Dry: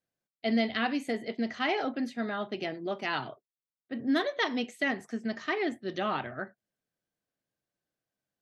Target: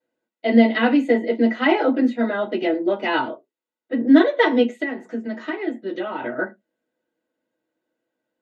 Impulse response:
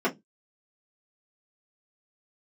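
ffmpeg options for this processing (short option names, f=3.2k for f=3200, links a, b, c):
-filter_complex "[0:a]asettb=1/sr,asplit=3[a][b][c];[a]atrim=end=4.634[d];[b]atrim=start=4.63:end=6.22,asetpts=PTS-STARTPTS,afade=t=in:d=0.004:c=qsin,afade=t=out:st=1.586:d=0.004:c=qsin,acompressor=threshold=-36dB:ratio=6[e];[c]atrim=start=6.216[f];[d][e]acrossfade=d=0.004:c1=hsin:c2=qsin[g];[g][f]acrossfade=d=0.004:c1=qsin:c2=hsin[h];[1:a]atrim=start_sample=2205,asetrate=57330,aresample=44100[i];[h][i]afir=irnorm=-1:irlink=0,volume=-1dB"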